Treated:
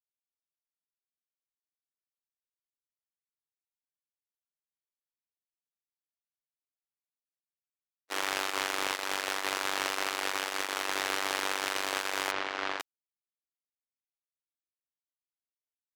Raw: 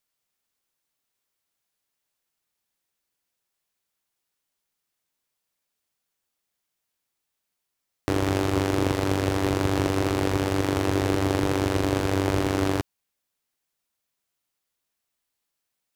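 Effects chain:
noise gate −23 dBFS, range −55 dB
high-pass filter 1,300 Hz 12 dB per octave
leveller curve on the samples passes 1
0:12.31–0:12.80: high-frequency loss of the air 170 metres
level +1.5 dB

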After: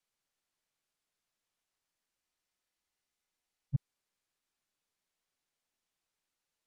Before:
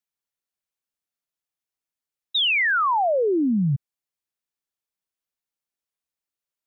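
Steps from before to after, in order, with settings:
gain on one half-wave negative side −3 dB
frozen spectrum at 0:02.24, 1.51 s
linearly interpolated sample-rate reduction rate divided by 2×
level +3.5 dB

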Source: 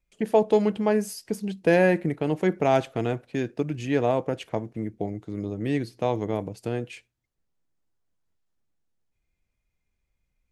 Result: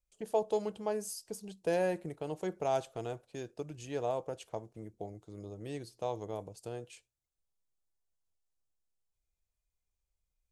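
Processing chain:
octave-band graphic EQ 125/250/2,000/8,000 Hz −5/−11/−11/+6 dB
level −7.5 dB

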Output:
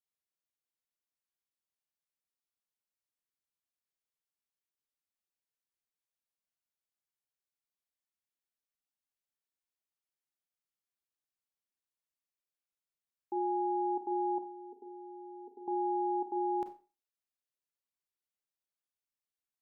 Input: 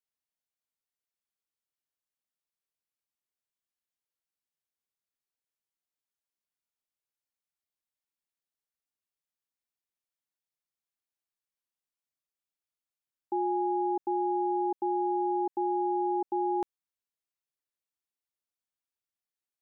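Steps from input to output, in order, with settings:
0:14.38–0:15.68: pair of resonant band-passes 330 Hz, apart 0.72 octaves
four-comb reverb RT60 0.33 s, combs from 30 ms, DRR 7.5 dB
level −5.5 dB

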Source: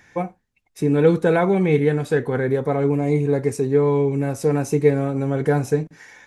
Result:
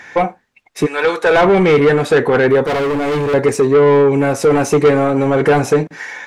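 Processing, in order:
0:00.85–0:01.37: high-pass filter 1,400 Hz → 500 Hz 12 dB per octave
mid-hump overdrive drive 24 dB, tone 2,400 Hz, clips at −3 dBFS
0:02.64–0:03.34: gain into a clipping stage and back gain 16 dB
level +1 dB

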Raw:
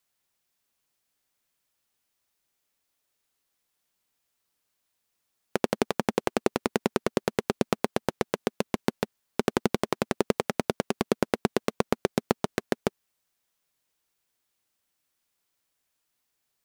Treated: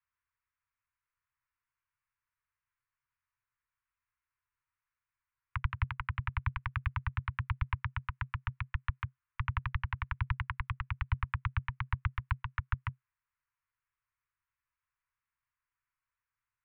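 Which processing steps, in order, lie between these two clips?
adaptive Wiener filter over 9 samples
single-sideband voice off tune −300 Hz 290–2,900 Hz
Chebyshev band-stop filter 130–960 Hz, order 5
level −1.5 dB

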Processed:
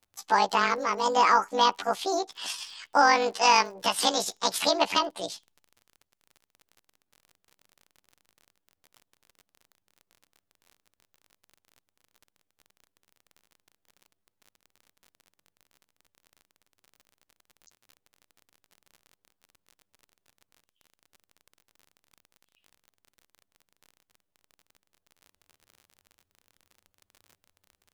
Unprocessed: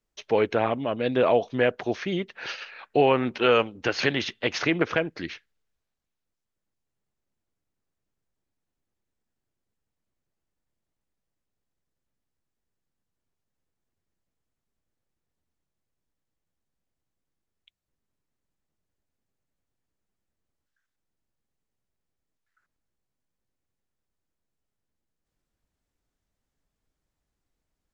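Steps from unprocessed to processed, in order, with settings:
pitch shift by two crossfaded delay taps +11.5 semitones
surface crackle 38 per second −42 dBFS
level +1 dB

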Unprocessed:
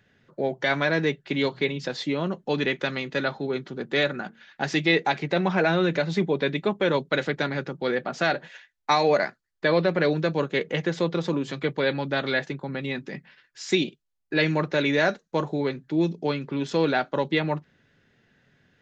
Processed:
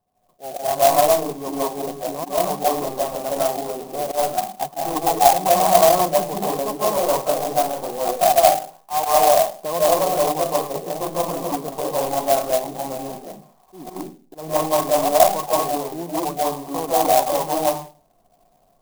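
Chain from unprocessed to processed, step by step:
running median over 15 samples
spectral tilt −3 dB per octave
automatic gain control gain up to 7.5 dB
convolution reverb RT60 0.40 s, pre-delay 120 ms, DRR −7.5 dB
gain into a clipping stage and back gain 2.5 dB
parametric band 120 Hz −7 dB 0.44 octaves
volume swells 127 ms
formant resonators in series a
converter with an unsteady clock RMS 0.075 ms
level +6 dB

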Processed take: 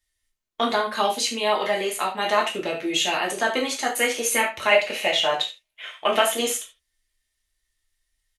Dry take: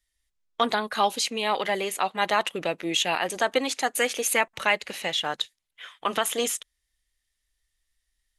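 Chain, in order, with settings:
0:04.71–0:06.22: graphic EQ with 15 bands 100 Hz −5 dB, 630 Hz +10 dB, 2,500 Hz +8 dB
single-tap delay 74 ms −15.5 dB
reverb whose tail is shaped and stops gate 110 ms falling, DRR −2 dB
level −2 dB

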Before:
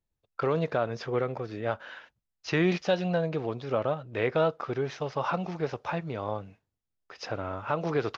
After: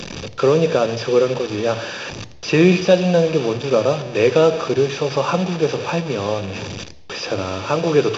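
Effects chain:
linear delta modulator 32 kbit/s, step −32 dBFS
parametric band 1,500 Hz −10 dB 0.52 octaves
convolution reverb RT60 0.85 s, pre-delay 3 ms, DRR 13.5 dB
level +5.5 dB

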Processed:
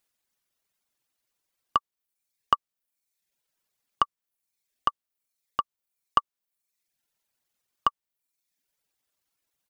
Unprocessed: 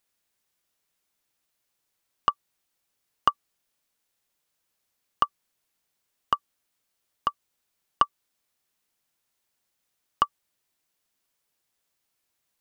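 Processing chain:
reverb reduction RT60 0.98 s
tempo change 1.3×

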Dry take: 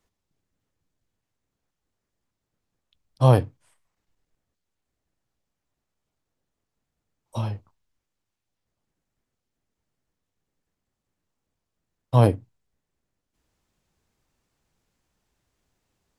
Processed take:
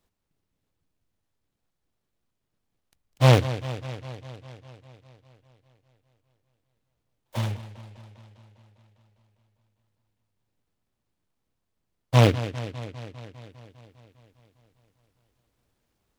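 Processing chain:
bucket-brigade delay 201 ms, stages 4,096, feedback 70%, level −14 dB
short delay modulated by noise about 2,200 Hz, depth 0.11 ms

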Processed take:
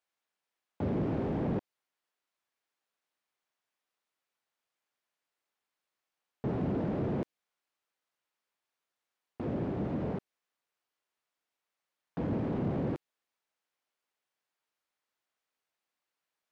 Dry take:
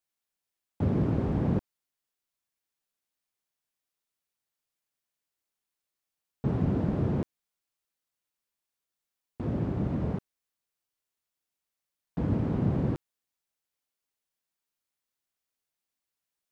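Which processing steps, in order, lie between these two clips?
mid-hump overdrive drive 21 dB, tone 1,500 Hz, clips at −14.5 dBFS
dynamic equaliser 1,200 Hz, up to −6 dB, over −45 dBFS, Q 0.98
level −6.5 dB

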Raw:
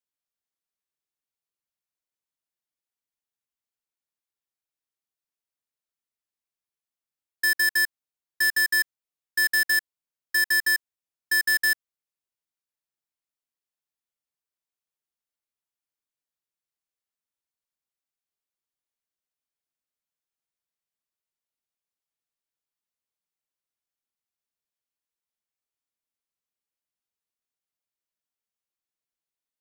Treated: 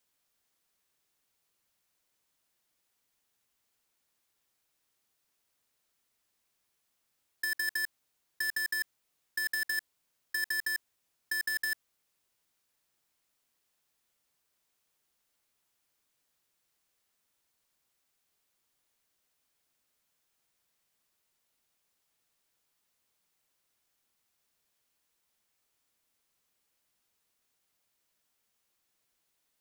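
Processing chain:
compressor whose output falls as the input rises −33 dBFS, ratio −1
level +1.5 dB

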